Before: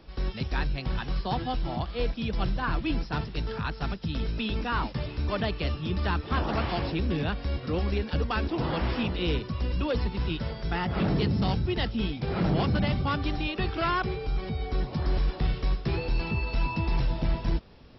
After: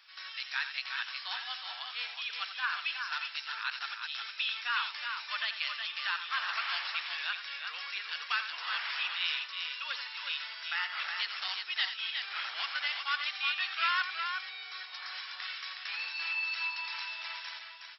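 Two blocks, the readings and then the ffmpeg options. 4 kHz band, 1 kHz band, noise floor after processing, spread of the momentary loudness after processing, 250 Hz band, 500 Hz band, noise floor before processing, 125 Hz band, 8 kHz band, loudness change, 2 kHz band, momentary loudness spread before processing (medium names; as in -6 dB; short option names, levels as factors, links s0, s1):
+4.5 dB, -5.5 dB, -46 dBFS, 7 LU, under -40 dB, -28.0 dB, -40 dBFS, under -40 dB, no reading, -4.5 dB, +3.5 dB, 5 LU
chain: -af "highpass=f=1400:w=0.5412,highpass=f=1400:w=1.3066,aecho=1:1:86|366:0.299|0.531,volume=1.41"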